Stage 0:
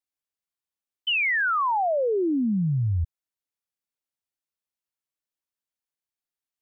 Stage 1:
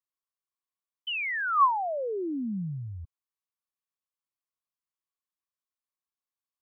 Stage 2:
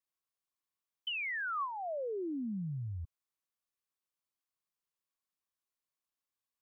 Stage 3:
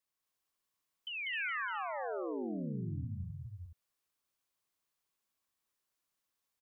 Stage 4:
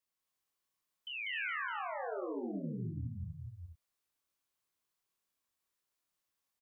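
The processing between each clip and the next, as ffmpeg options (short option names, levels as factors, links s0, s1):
-filter_complex "[0:a]acrossover=split=160|580[s0][s1][s2];[s0]alimiter=level_in=1.88:limit=0.0631:level=0:latency=1:release=153,volume=0.531[s3];[s3][s1][s2]amix=inputs=3:normalize=0,equalizer=f=1100:t=o:w=0.29:g=14.5,volume=0.398"
-af "acompressor=threshold=0.0158:ratio=6"
-filter_complex "[0:a]asplit=2[s0][s1];[s1]aecho=0:1:416:0.299[s2];[s0][s2]amix=inputs=2:normalize=0,alimiter=level_in=5.62:limit=0.0631:level=0:latency=1:release=309,volume=0.178,asplit=2[s3][s4];[s4]aecho=0:1:195.3|262.4:0.891|0.631[s5];[s3][s5]amix=inputs=2:normalize=0,volume=1.33"
-filter_complex "[0:a]asplit=2[s0][s1];[s1]adelay=25,volume=0.631[s2];[s0][s2]amix=inputs=2:normalize=0,volume=0.75"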